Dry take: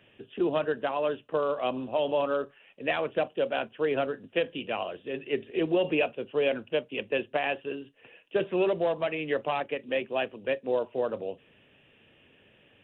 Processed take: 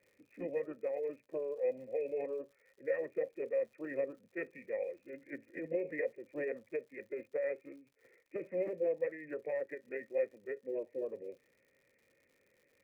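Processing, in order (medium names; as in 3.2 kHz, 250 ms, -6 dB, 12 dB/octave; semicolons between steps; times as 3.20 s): formant shift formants -4 st; cascade formant filter e; crackle 120 per s -58 dBFS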